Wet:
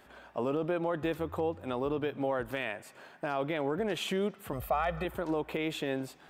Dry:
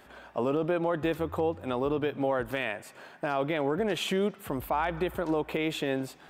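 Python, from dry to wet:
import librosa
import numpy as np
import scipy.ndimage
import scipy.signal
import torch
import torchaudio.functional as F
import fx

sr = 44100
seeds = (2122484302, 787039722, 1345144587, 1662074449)

y = fx.comb(x, sr, ms=1.6, depth=0.8, at=(4.53, 5.05))
y = F.gain(torch.from_numpy(y), -3.5).numpy()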